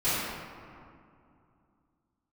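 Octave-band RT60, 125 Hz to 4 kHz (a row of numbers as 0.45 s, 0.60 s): 3.1 s, 3.2 s, 2.5 s, 2.5 s, 1.8 s, 1.2 s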